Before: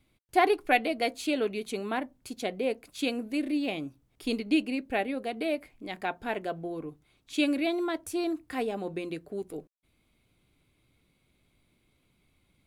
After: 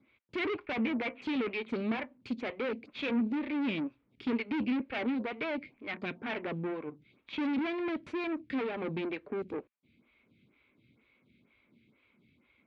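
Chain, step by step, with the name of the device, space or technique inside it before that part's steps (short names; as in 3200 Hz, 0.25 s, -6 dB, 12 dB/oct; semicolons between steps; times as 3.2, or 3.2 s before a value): 0.65–1.22 steep low-pass 2800 Hz; vibe pedal into a guitar amplifier (photocell phaser 2.1 Hz; tube stage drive 40 dB, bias 0.7; speaker cabinet 95–3600 Hz, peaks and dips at 230 Hz +8 dB, 730 Hz -7 dB, 2300 Hz +7 dB); gain +8.5 dB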